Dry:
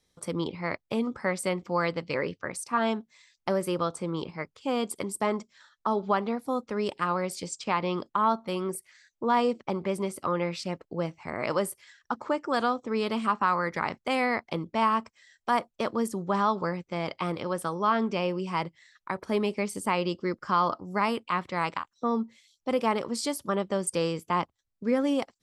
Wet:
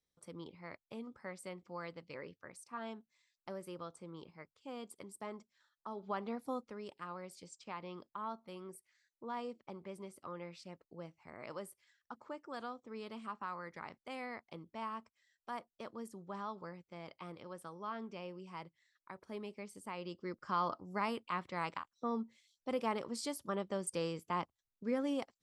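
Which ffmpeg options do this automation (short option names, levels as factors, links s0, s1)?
-af "volume=0.891,afade=t=in:st=5.95:d=0.51:silence=0.354813,afade=t=out:st=6.46:d=0.33:silence=0.354813,afade=t=in:st=19.93:d=0.67:silence=0.398107"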